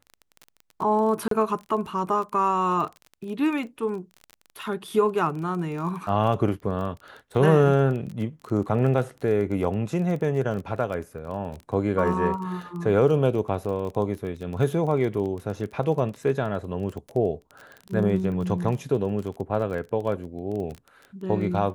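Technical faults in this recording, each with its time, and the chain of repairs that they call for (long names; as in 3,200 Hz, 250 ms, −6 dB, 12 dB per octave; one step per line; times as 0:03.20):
surface crackle 23 per second −32 dBFS
0:01.28–0:01.31: drop-out 33 ms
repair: click removal
repair the gap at 0:01.28, 33 ms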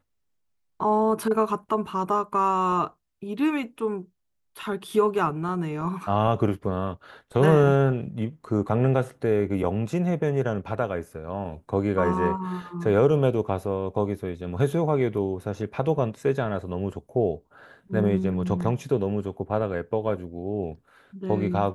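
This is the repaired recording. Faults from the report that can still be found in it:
none of them is left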